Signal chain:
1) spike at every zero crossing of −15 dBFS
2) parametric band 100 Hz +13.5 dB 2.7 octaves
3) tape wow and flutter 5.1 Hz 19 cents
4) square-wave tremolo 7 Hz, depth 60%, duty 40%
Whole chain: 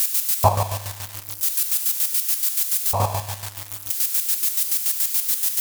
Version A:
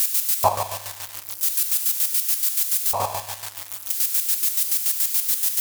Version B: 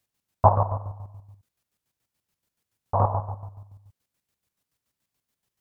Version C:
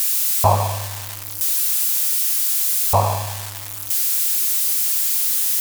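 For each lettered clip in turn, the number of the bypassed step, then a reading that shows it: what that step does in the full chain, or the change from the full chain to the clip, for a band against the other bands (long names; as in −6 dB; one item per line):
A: 2, change in crest factor −1.5 dB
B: 1, change in crest factor +7.0 dB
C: 4, change in crest factor −3.0 dB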